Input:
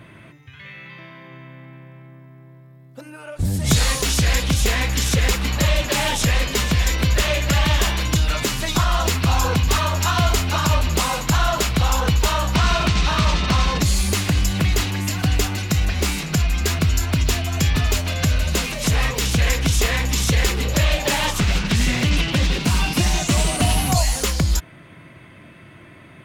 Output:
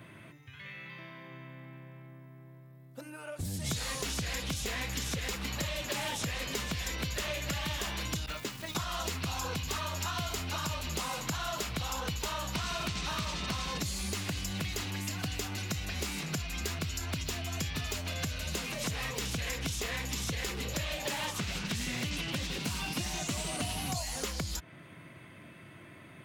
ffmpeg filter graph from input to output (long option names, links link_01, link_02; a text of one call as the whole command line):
ffmpeg -i in.wav -filter_complex "[0:a]asettb=1/sr,asplit=3[link_01][link_02][link_03];[link_01]atrim=end=8.264[link_04];[link_02]atrim=start=8.26:end=8.75,asetpts=PTS-STARTPTS,afade=type=in:duration=0.004:curve=qsin,afade=type=out:start_time=0.486:duration=0.004:curve=qsin,agate=range=-33dB:threshold=-18dB:ratio=3:release=100:detection=peak,highshelf=frequency=5800:gain=-11.5,acrusher=bits=8:dc=4:mix=0:aa=0.000001[link_05];[link_03]atrim=start=8.746[link_06];[link_04][link_05]acrossfade=duration=0.004:curve1=hsin:curve2=qsin[link_07];[link_07][link_06]acrossfade=duration=0.004:curve1=qsin:curve2=hsin,highpass=82,highshelf=frequency=9200:gain=8,acrossover=split=2400|7000[link_08][link_09][link_10];[link_08]acompressor=threshold=-28dB:ratio=4[link_11];[link_09]acompressor=threshold=-33dB:ratio=4[link_12];[link_10]acompressor=threshold=-41dB:ratio=4[link_13];[link_11][link_12][link_13]amix=inputs=3:normalize=0,volume=-7dB" out.wav